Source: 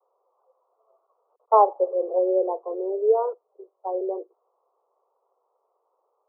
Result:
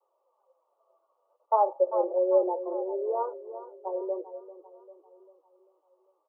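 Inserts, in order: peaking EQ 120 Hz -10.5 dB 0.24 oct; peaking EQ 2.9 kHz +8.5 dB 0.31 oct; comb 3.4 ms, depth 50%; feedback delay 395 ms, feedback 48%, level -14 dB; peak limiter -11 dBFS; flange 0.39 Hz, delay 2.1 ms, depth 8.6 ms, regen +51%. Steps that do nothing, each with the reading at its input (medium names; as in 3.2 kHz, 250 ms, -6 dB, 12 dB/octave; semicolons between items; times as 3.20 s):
peaking EQ 120 Hz: input has nothing below 340 Hz; peaking EQ 2.9 kHz: input has nothing above 1.2 kHz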